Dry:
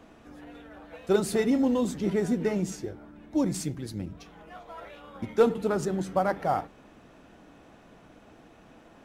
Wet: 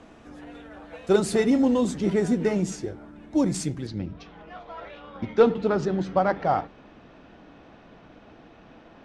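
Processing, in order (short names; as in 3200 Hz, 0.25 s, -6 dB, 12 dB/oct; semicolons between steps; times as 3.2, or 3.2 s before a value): LPF 10000 Hz 24 dB/oct, from 3.87 s 5100 Hz; gain +3.5 dB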